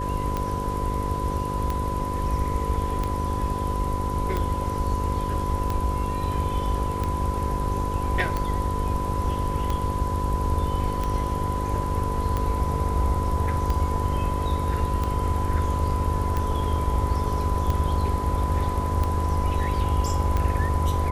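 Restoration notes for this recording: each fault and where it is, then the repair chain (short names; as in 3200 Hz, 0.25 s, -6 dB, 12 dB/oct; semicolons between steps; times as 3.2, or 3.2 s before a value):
buzz 50 Hz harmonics 11 -30 dBFS
tick 45 rpm -14 dBFS
tone 1000 Hz -29 dBFS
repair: de-click; de-hum 50 Hz, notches 11; notch 1000 Hz, Q 30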